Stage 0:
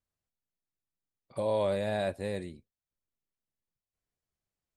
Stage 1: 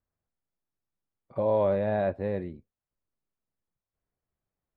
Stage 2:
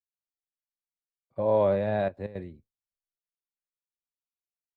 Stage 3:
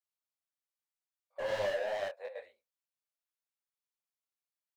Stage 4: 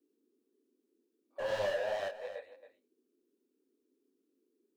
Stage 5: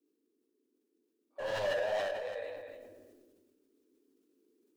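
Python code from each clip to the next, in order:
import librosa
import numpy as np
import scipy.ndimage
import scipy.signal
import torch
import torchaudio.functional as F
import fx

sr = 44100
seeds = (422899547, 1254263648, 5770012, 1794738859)

y1 = scipy.signal.sosfilt(scipy.signal.butter(2, 1500.0, 'lowpass', fs=sr, output='sos'), x)
y1 = y1 * librosa.db_to_amplitude(4.5)
y2 = fx.step_gate(y1, sr, bpm=166, pattern='x.xxxxxxxxx.', floor_db=-12.0, edge_ms=4.5)
y2 = fx.band_widen(y2, sr, depth_pct=70)
y3 = scipy.signal.sosfilt(scipy.signal.ellip(4, 1.0, 40, 520.0, 'highpass', fs=sr, output='sos'), y2)
y3 = np.clip(y3, -10.0 ** (-32.5 / 20.0), 10.0 ** (-32.5 / 20.0))
y3 = fx.detune_double(y3, sr, cents=42)
y3 = y3 * librosa.db_to_amplitude(3.0)
y4 = fx.notch(y3, sr, hz=2100.0, q=10.0)
y4 = fx.dmg_noise_band(y4, sr, seeds[0], low_hz=240.0, high_hz=430.0, level_db=-78.0)
y4 = y4 + 10.0 ** (-13.0 / 20.0) * np.pad(y4, (int(273 * sr / 1000.0), 0))[:len(y4)]
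y5 = fx.rider(y4, sr, range_db=10, speed_s=2.0)
y5 = fx.room_shoebox(y5, sr, seeds[1], volume_m3=1600.0, walls='mixed', distance_m=0.48)
y5 = fx.sustainer(y5, sr, db_per_s=29.0)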